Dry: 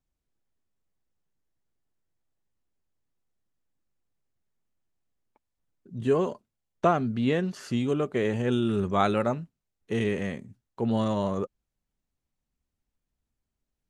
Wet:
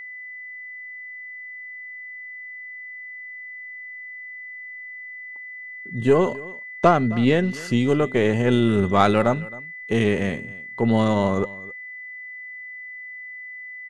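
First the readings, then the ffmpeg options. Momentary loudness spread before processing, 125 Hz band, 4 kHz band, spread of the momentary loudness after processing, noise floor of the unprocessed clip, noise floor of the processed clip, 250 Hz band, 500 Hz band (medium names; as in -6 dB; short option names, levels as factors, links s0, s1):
11 LU, +7.0 dB, +7.5 dB, 16 LU, -85 dBFS, -38 dBFS, +6.5 dB, +6.5 dB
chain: -af "aeval=exprs='0.376*(cos(1*acos(clip(val(0)/0.376,-1,1)))-cos(1*PI/2))+0.0106*(cos(8*acos(clip(val(0)/0.376,-1,1)))-cos(8*PI/2))':c=same,aecho=1:1:266:0.0944,aeval=exprs='val(0)+0.00891*sin(2*PI*2000*n/s)':c=same,volume=2.11"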